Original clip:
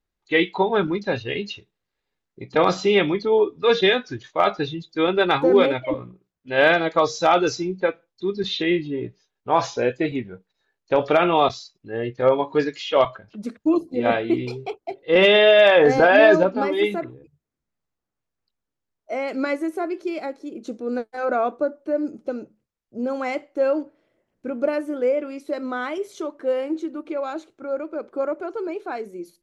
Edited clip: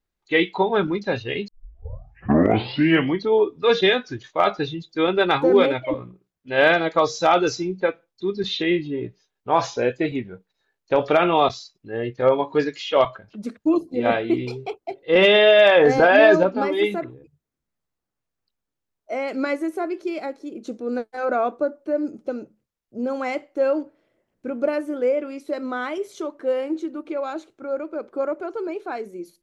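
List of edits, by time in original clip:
1.48 s: tape start 1.79 s

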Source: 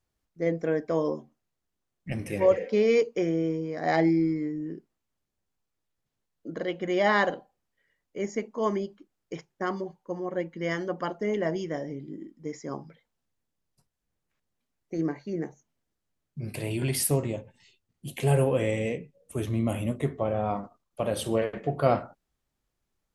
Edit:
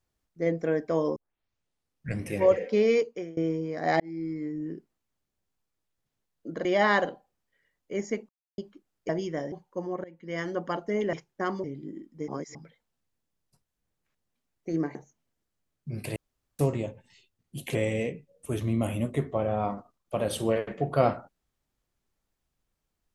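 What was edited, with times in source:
1.16 s: tape start 1.08 s
2.87–3.37 s: fade out, to -23.5 dB
4.00–4.63 s: fade in
6.65–6.90 s: delete
8.54–8.83 s: mute
9.34–9.85 s: swap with 11.46–11.89 s
10.37–10.87 s: fade in linear, from -24 dB
12.53–12.80 s: reverse
15.20–15.45 s: delete
16.66–17.09 s: room tone
18.25–18.61 s: delete

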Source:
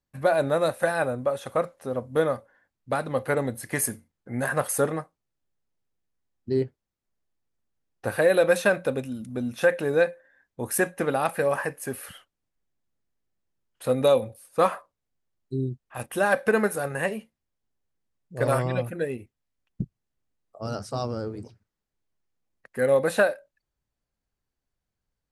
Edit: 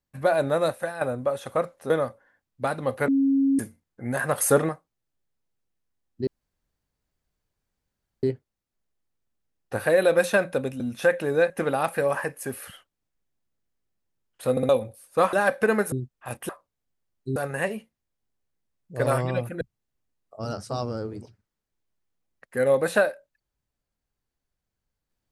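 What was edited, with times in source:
0.70–1.01 s: fade out quadratic, to -9.5 dB
1.90–2.18 s: delete
3.36–3.87 s: bleep 273 Hz -17.5 dBFS
4.66–4.97 s: gain +4.5 dB
6.55 s: insert room tone 1.96 s
9.12–9.39 s: delete
10.09–10.91 s: delete
13.92 s: stutter in place 0.06 s, 3 plays
14.74–15.61 s: swap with 16.18–16.77 s
19.02–19.83 s: delete

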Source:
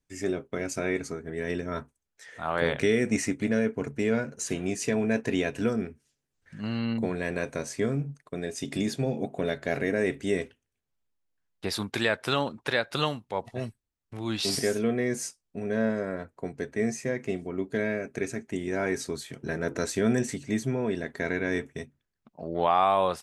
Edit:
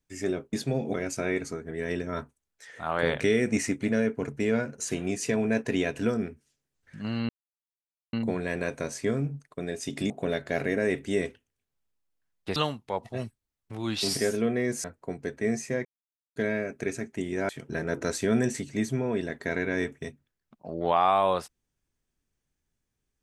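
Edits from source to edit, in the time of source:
6.88 s: insert silence 0.84 s
8.85–9.26 s: move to 0.53 s
11.72–12.98 s: delete
15.26–16.19 s: delete
17.20–17.71 s: mute
18.84–19.23 s: delete

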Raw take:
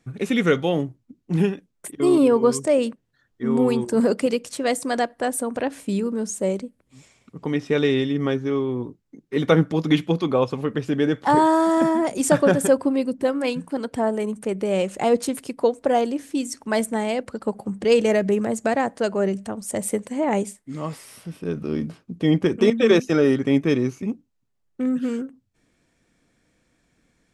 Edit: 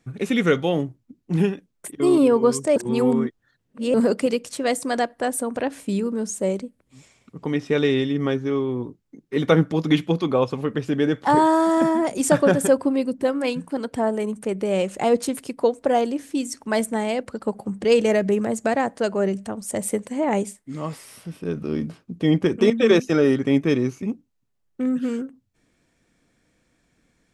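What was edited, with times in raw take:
2.76–3.94 s: reverse

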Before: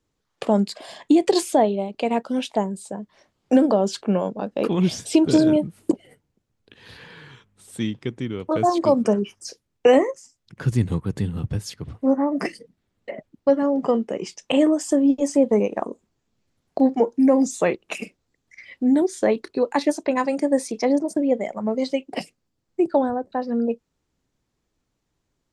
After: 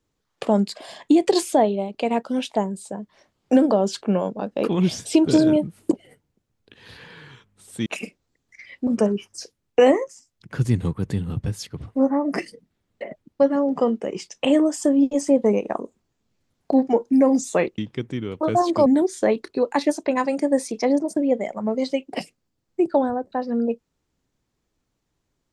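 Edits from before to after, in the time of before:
7.86–8.94 s: swap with 17.85–18.86 s

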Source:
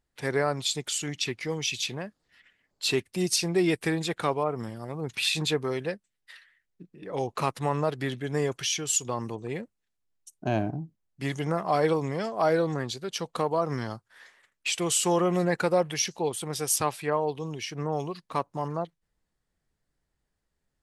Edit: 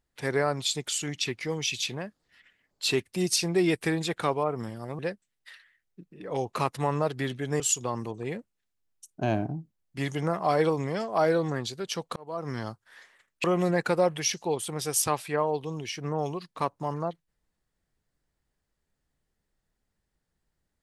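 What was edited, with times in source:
4.99–5.81 s: delete
8.42–8.84 s: delete
13.40–13.89 s: fade in
14.68–15.18 s: delete

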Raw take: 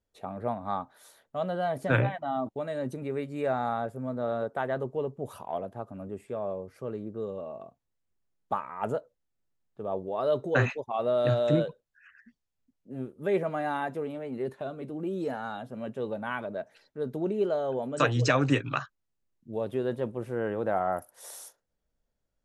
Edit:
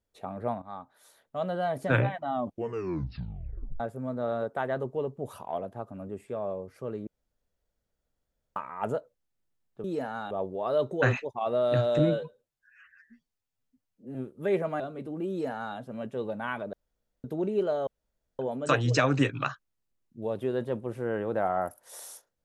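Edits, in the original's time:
0.62–1.46 s: fade in, from -13 dB
2.33 s: tape stop 1.47 s
7.07–8.56 s: room tone
11.52–12.96 s: stretch 1.5×
13.61–14.63 s: delete
15.13–15.60 s: copy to 9.84 s
16.56–17.07 s: room tone
17.70 s: insert room tone 0.52 s

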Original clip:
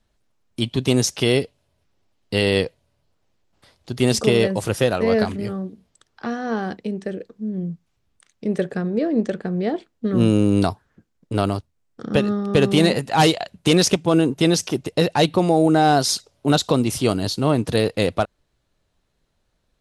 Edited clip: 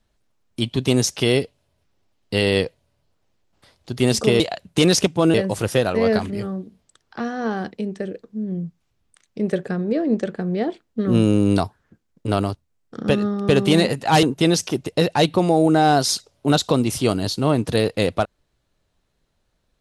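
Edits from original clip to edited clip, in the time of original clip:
13.29–14.23 s: move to 4.40 s

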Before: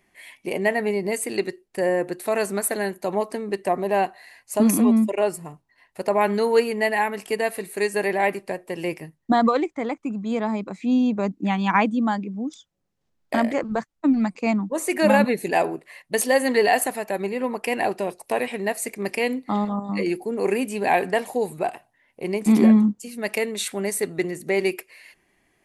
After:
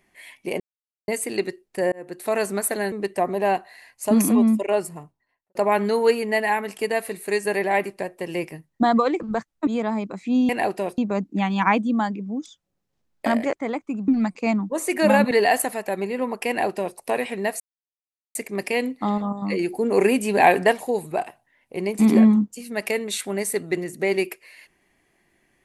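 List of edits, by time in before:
0.60–1.08 s: mute
1.92–2.29 s: fade in
2.92–3.41 s: delete
5.36–6.04 s: studio fade out
9.69–10.24 s: swap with 13.61–14.08 s
15.31–16.53 s: delete
17.70–18.19 s: copy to 11.06 s
18.82 s: insert silence 0.75 s
20.17–21.19 s: gain +4.5 dB

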